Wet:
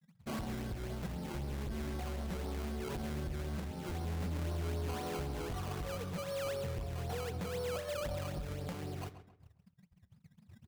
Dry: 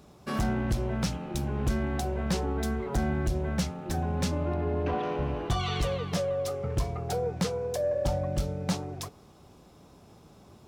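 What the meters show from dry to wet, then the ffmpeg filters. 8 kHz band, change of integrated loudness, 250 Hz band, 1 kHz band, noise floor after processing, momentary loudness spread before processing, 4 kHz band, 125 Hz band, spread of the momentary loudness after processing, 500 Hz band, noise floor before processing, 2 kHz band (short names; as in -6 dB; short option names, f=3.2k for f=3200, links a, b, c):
-9.5 dB, -9.0 dB, -10.0 dB, -10.0 dB, -69 dBFS, 3 LU, -9.0 dB, -8.5 dB, 4 LU, -9.5 dB, -55 dBFS, -7.5 dB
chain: -filter_complex "[0:a]afftfilt=real='re*gte(hypot(re,im),0.0158)':imag='im*gte(hypot(re,im),0.0158)':win_size=1024:overlap=0.75,lowshelf=f=290:g=4.5,acompressor=threshold=-29dB:ratio=8,aresample=16000,asoftclip=type=tanh:threshold=-32dB,aresample=44100,acrusher=bits=4:mode=log:mix=0:aa=0.000001,flanger=delay=7.7:depth=6:regen=-67:speed=0.29:shape=triangular,acrusher=samples=17:mix=1:aa=0.000001:lfo=1:lforange=17:lforate=3.9,asplit=2[a][b];[b]adelay=134,lowpass=f=2.8k:p=1,volume=-11.5dB,asplit=2[c][d];[d]adelay=134,lowpass=f=2.8k:p=1,volume=0.37,asplit=2[e][f];[f]adelay=134,lowpass=f=2.8k:p=1,volume=0.37,asplit=2[g][h];[h]adelay=134,lowpass=f=2.8k:p=1,volume=0.37[i];[a][c][e][g][i]amix=inputs=5:normalize=0,volume=1.5dB"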